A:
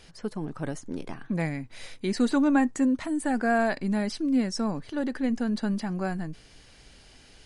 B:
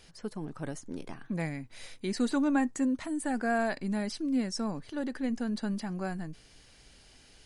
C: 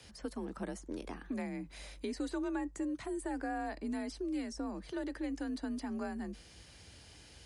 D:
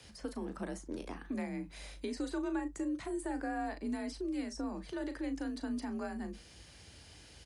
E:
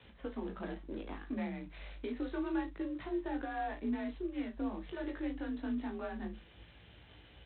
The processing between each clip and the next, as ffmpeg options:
-af "highshelf=f=5.7k:g=5,volume=-5dB"
-filter_complex "[0:a]acrossover=split=120|1100[a][b][c];[a]acompressor=threshold=-53dB:ratio=4[d];[b]acompressor=threshold=-38dB:ratio=4[e];[c]acompressor=threshold=-51dB:ratio=4[f];[d][e][f]amix=inputs=3:normalize=0,afreqshift=44,volume=1dB"
-filter_complex "[0:a]asplit=2[a][b];[b]adelay=37,volume=-10dB[c];[a][c]amix=inputs=2:normalize=0"
-af "flanger=delay=16.5:depth=3.6:speed=0.27,volume=2.5dB" -ar 8000 -c:a adpcm_g726 -b:a 24k

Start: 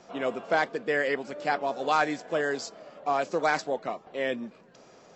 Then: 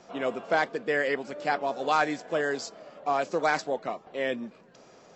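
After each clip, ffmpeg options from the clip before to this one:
-af anull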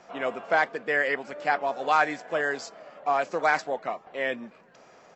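-af "firequalizer=gain_entry='entry(350,0);entry(730,6);entry(1100,6);entry(1900,8);entry(3700,1)':delay=0.05:min_phase=1,volume=-3.5dB"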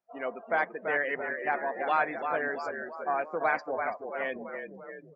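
-filter_complex "[0:a]asplit=9[a][b][c][d][e][f][g][h][i];[b]adelay=335,afreqshift=-40,volume=-6dB[j];[c]adelay=670,afreqshift=-80,volume=-10.7dB[k];[d]adelay=1005,afreqshift=-120,volume=-15.5dB[l];[e]adelay=1340,afreqshift=-160,volume=-20.2dB[m];[f]adelay=1675,afreqshift=-200,volume=-24.9dB[n];[g]adelay=2010,afreqshift=-240,volume=-29.7dB[o];[h]adelay=2345,afreqshift=-280,volume=-34.4dB[p];[i]adelay=2680,afreqshift=-320,volume=-39.1dB[q];[a][j][k][l][m][n][o][p][q]amix=inputs=9:normalize=0,afftdn=nr=32:nf=-35,volume=-5dB"

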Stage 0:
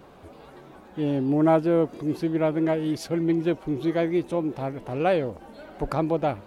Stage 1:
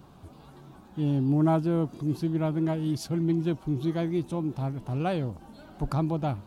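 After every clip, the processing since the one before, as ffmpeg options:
-af "equalizer=f=125:t=o:w=1:g=6,equalizer=f=500:t=o:w=1:g=-11,equalizer=f=2k:t=o:w=1:g=-10"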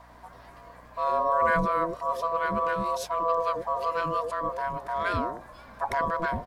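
-filter_complex "[0:a]aeval=exprs='val(0)*sin(2*PI*830*n/s)':c=same,acrossover=split=540[a][b];[a]adelay=90[c];[c][b]amix=inputs=2:normalize=0,aeval=exprs='val(0)+0.00112*(sin(2*PI*60*n/s)+sin(2*PI*2*60*n/s)/2+sin(2*PI*3*60*n/s)/3+sin(2*PI*4*60*n/s)/4+sin(2*PI*5*60*n/s)/5)':c=same,volume=4dB"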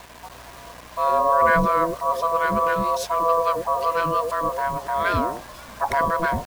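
-af "acrusher=bits=7:mix=0:aa=0.000001,volume=6dB"

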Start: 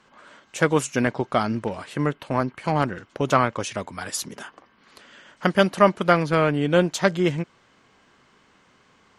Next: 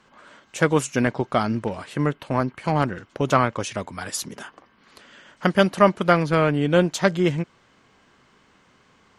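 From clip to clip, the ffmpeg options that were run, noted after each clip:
-af "lowshelf=f=200:g=3"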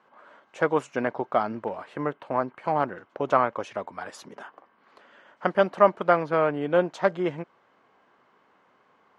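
-af "bandpass=f=770:t=q:w=0.94:csg=0"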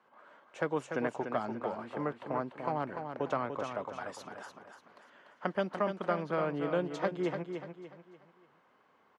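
-filter_complex "[0:a]acrossover=split=320|3000[a][b][c];[b]acompressor=threshold=-25dB:ratio=6[d];[a][d][c]amix=inputs=3:normalize=0,asplit=2[e][f];[f]aecho=0:1:293|586|879|1172:0.447|0.165|0.0612|0.0226[g];[e][g]amix=inputs=2:normalize=0,volume=-5.5dB"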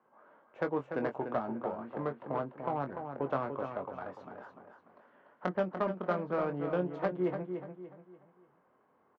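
-filter_complex "[0:a]adynamicsmooth=sensitivity=1:basefreq=1.4k,asplit=2[a][b];[b]adelay=22,volume=-7.5dB[c];[a][c]amix=inputs=2:normalize=0"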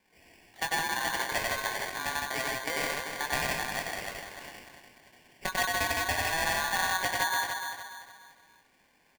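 -af "aecho=1:1:96.21|163.3:0.794|0.794,aeval=exprs='val(0)*sgn(sin(2*PI*1300*n/s))':c=same"

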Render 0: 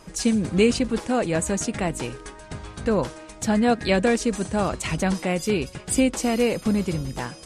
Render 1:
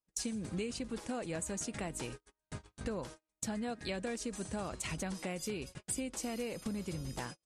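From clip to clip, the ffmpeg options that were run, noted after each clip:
-af "agate=range=-43dB:threshold=-33dB:ratio=16:detection=peak,highshelf=f=4.3k:g=6,acompressor=threshold=-29dB:ratio=6,volume=-7dB"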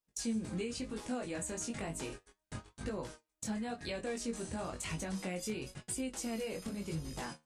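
-filter_complex "[0:a]flanger=delay=19:depth=4:speed=1,asplit=2[a][b];[b]alimiter=level_in=13dB:limit=-24dB:level=0:latency=1:release=188,volume=-13dB,volume=-0.5dB[c];[a][c]amix=inputs=2:normalize=0,flanger=delay=8.2:depth=4.8:regen=70:speed=0.34:shape=sinusoidal,volume=3dB"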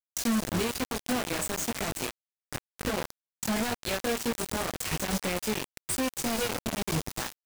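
-filter_complex "[0:a]asplit=4[a][b][c][d];[b]adelay=200,afreqshift=-120,volume=-16dB[e];[c]adelay=400,afreqshift=-240,volume=-25.1dB[f];[d]adelay=600,afreqshift=-360,volume=-34.2dB[g];[a][e][f][g]amix=inputs=4:normalize=0,acrusher=bits=5:mix=0:aa=0.000001,volume=7dB"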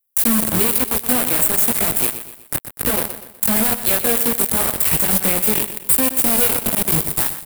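-filter_complex "[0:a]acrossover=split=330|4200[a][b][c];[c]asoftclip=type=hard:threshold=-32.5dB[d];[a][b][d]amix=inputs=3:normalize=0,aexciter=amount=7.4:drive=4.8:freq=8.6k,aecho=1:1:123|246|369|492:0.266|0.114|0.0492|0.0212,volume=7.5dB"

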